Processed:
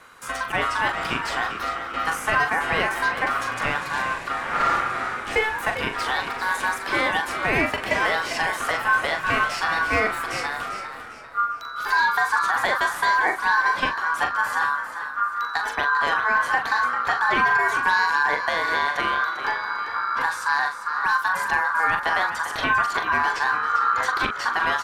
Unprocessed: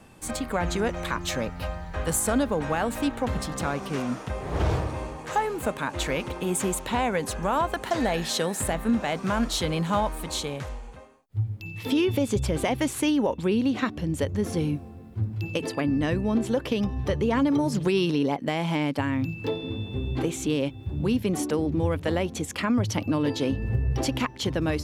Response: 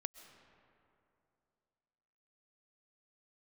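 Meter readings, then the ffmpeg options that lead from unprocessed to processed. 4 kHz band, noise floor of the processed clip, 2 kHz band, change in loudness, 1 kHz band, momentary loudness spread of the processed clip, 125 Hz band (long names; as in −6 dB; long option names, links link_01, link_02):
+3.0 dB, −34 dBFS, +15.0 dB, +4.5 dB, +10.5 dB, 6 LU, −13.0 dB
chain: -filter_complex "[0:a]acrossover=split=3400[link_01][link_02];[link_02]acompressor=threshold=-39dB:ratio=4:attack=1:release=60[link_03];[link_01][link_03]amix=inputs=2:normalize=0,aeval=exprs='val(0)*sin(2*PI*1300*n/s)':channel_layout=same,asplit=5[link_04][link_05][link_06][link_07][link_08];[link_05]adelay=397,afreqshift=56,volume=-10.5dB[link_09];[link_06]adelay=794,afreqshift=112,volume=-18.9dB[link_10];[link_07]adelay=1191,afreqshift=168,volume=-27.3dB[link_11];[link_08]adelay=1588,afreqshift=224,volume=-35.7dB[link_12];[link_04][link_09][link_10][link_11][link_12]amix=inputs=5:normalize=0,asplit=2[link_13][link_14];[1:a]atrim=start_sample=2205,asetrate=22932,aresample=44100,adelay=41[link_15];[link_14][link_15]afir=irnorm=-1:irlink=0,volume=-8dB[link_16];[link_13][link_16]amix=inputs=2:normalize=0,volume=5dB"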